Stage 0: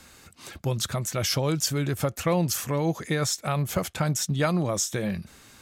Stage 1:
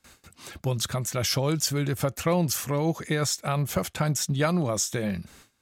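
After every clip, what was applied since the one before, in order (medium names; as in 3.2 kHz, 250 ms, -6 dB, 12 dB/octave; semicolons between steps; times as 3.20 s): gate with hold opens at -40 dBFS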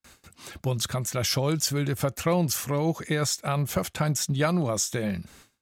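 gate with hold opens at -54 dBFS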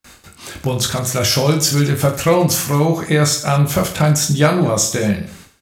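reverse bouncing-ball echo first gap 20 ms, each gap 1.4×, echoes 5; trim +8.5 dB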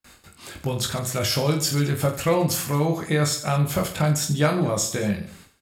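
band-stop 6 kHz, Q 8.5; trim -7 dB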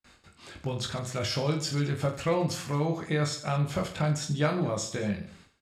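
low-pass 6 kHz 12 dB/octave; trim -6 dB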